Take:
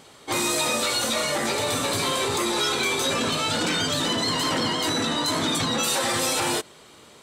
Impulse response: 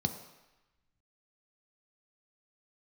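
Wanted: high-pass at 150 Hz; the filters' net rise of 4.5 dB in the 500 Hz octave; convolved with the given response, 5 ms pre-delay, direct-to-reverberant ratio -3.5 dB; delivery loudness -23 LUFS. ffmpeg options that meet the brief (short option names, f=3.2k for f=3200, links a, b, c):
-filter_complex "[0:a]highpass=150,equalizer=f=500:t=o:g=5.5,asplit=2[a][b];[1:a]atrim=start_sample=2205,adelay=5[c];[b][c]afir=irnorm=-1:irlink=0,volume=-0.5dB[d];[a][d]amix=inputs=2:normalize=0,volume=-8.5dB"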